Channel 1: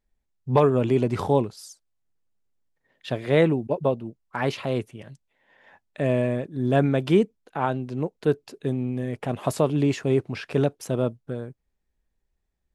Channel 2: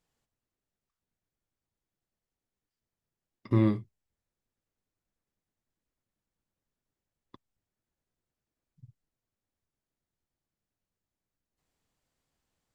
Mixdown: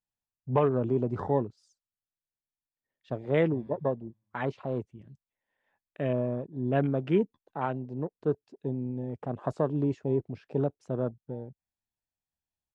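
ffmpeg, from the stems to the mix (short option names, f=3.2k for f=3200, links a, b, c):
-filter_complex "[0:a]highpass=f=52:w=0.5412,highpass=f=52:w=1.3066,afwtdn=0.02,lowpass=f=7.6k:w=0.5412,lowpass=f=7.6k:w=1.3066,volume=-6dB[a];[1:a]aecho=1:1:1.2:0.65,acompressor=threshold=-33dB:ratio=3,flanger=delay=9.7:depth=3.8:regen=-17:speed=0.59:shape=sinusoidal,volume=-14.5dB,asplit=2[b][c];[c]volume=-14dB,aecho=0:1:140|280|420|560|700|840|980:1|0.51|0.26|0.133|0.0677|0.0345|0.0176[d];[a][b][d]amix=inputs=3:normalize=0"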